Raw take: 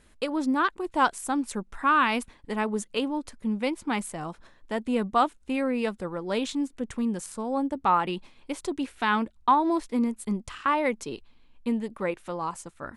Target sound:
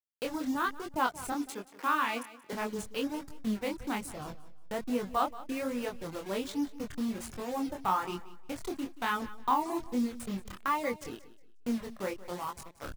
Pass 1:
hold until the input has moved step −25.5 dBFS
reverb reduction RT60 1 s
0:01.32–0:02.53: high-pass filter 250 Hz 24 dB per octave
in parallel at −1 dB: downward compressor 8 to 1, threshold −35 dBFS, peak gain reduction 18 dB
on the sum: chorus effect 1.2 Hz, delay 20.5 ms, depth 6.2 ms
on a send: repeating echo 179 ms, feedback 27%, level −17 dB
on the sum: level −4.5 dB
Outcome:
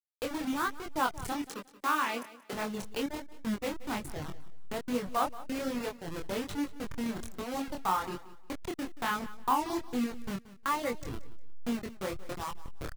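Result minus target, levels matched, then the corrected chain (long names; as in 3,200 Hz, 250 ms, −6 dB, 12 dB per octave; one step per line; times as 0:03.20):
hold until the input has moved: distortion +7 dB
hold until the input has moved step −32 dBFS
reverb reduction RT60 1 s
0:01.32–0:02.53: high-pass filter 250 Hz 24 dB per octave
in parallel at −1 dB: downward compressor 8 to 1, threshold −35 dBFS, peak gain reduction 18.5 dB
on the sum: chorus effect 1.2 Hz, delay 20.5 ms, depth 6.2 ms
on a send: repeating echo 179 ms, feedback 27%, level −17 dB
on the sum: level −4.5 dB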